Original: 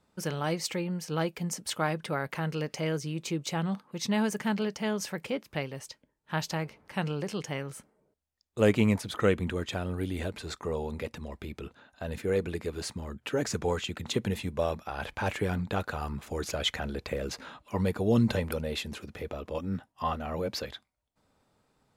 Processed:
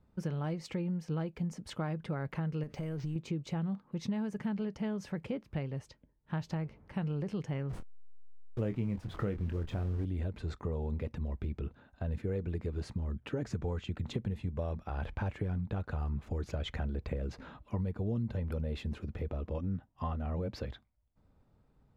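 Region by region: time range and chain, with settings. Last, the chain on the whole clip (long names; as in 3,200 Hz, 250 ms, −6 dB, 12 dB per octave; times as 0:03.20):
0:02.63–0:03.16: mu-law and A-law mismatch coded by mu + downward compressor 4 to 1, threshold −36 dBFS + bad sample-rate conversion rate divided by 4×, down none, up hold
0:07.70–0:10.05: hold until the input has moved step −38 dBFS + double-tracking delay 25 ms −8.5 dB
whole clip: RIAA equalisation playback; downward compressor 6 to 1, threshold −26 dBFS; level −5.5 dB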